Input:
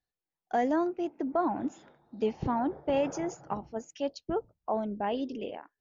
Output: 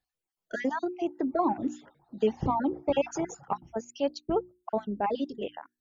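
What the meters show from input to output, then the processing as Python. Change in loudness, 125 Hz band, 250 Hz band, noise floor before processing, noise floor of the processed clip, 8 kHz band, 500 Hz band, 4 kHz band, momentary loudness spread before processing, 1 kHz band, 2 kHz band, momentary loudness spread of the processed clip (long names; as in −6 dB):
+1.0 dB, +2.5 dB, +1.0 dB, below −85 dBFS, below −85 dBFS, can't be measured, +1.5 dB, +2.5 dB, 9 LU, +1.0 dB, +2.5 dB, 10 LU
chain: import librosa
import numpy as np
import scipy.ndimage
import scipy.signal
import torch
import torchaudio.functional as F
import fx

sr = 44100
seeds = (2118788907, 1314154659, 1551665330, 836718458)

y = fx.spec_dropout(x, sr, seeds[0], share_pct=29)
y = fx.dereverb_blind(y, sr, rt60_s=0.52)
y = fx.hum_notches(y, sr, base_hz=60, count=6)
y = F.gain(torch.from_numpy(y), 4.0).numpy()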